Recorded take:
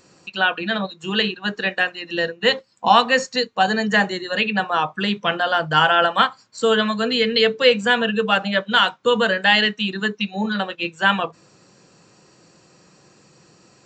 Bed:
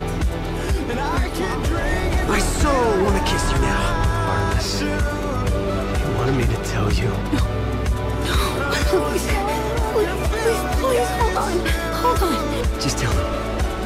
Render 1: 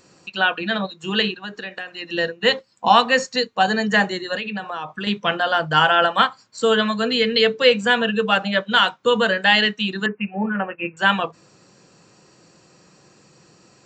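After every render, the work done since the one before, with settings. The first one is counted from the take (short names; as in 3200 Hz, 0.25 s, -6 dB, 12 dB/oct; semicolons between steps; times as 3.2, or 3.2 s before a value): 1.39–1.99 compressor 4:1, threshold -29 dBFS; 4.35–5.07 compressor 4:1, threshold -25 dBFS; 10.06–10.97 steep low-pass 2700 Hz 96 dB/oct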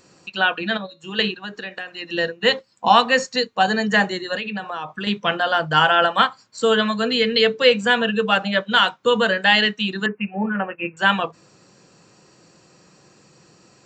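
0.77–1.19 resonator 280 Hz, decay 0.27 s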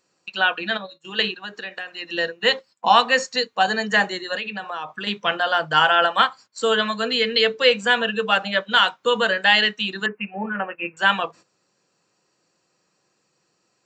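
gate -41 dBFS, range -14 dB; low shelf 270 Hz -11 dB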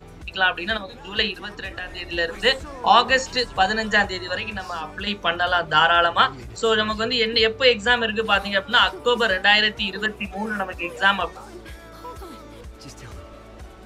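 add bed -19 dB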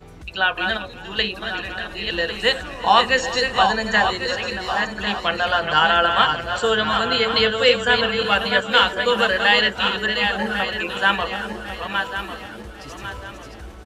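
regenerating reverse delay 0.549 s, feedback 56%, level -5.5 dB; echo 0.355 s -17.5 dB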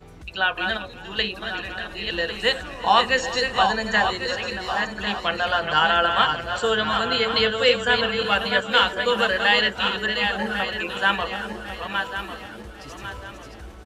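gain -2.5 dB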